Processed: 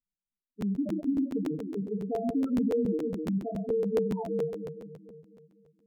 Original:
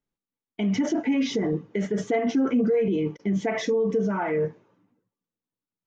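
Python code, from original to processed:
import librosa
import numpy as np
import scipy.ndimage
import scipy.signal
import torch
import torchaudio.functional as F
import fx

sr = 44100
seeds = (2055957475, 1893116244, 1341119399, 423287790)

y = fx.echo_split(x, sr, split_hz=410.0, low_ms=248, high_ms=116, feedback_pct=52, wet_db=-4.5)
y = np.repeat(scipy.signal.resample_poly(y, 1, 8), 8)[:len(y)]
y = fx.spec_topn(y, sr, count=4)
y = fx.buffer_crackle(y, sr, first_s=0.6, period_s=0.14, block=512, kind='repeat')
y = y * librosa.db_to_amplitude(-5.5)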